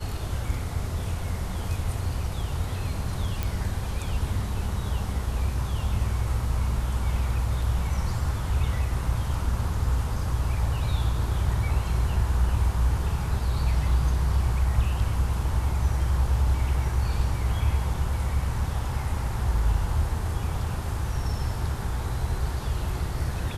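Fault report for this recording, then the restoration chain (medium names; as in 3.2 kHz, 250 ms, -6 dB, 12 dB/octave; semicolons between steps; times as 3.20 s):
3.43 s: pop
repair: de-click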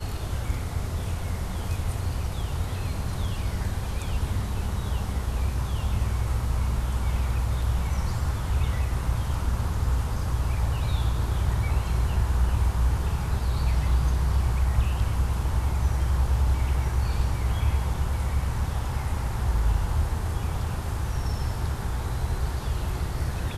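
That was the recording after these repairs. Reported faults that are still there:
nothing left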